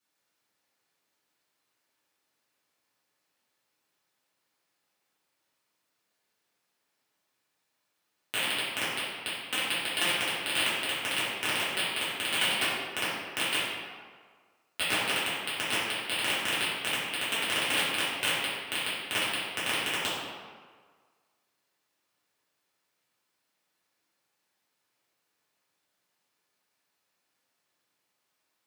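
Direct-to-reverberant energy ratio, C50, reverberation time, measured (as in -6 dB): -11.5 dB, -1.5 dB, 1.6 s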